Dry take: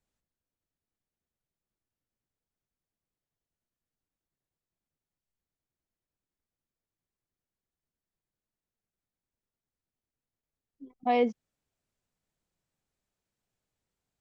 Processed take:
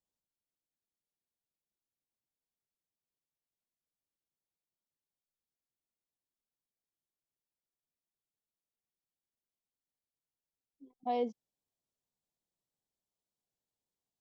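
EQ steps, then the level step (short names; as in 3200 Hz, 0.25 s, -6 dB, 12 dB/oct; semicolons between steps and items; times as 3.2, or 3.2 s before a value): low shelf 120 Hz -10.5 dB; band shelf 1800 Hz -10 dB 1.3 oct; -7.0 dB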